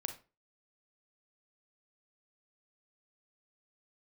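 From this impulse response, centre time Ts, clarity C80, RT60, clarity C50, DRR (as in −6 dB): 12 ms, 17.0 dB, 0.30 s, 10.0 dB, 6.5 dB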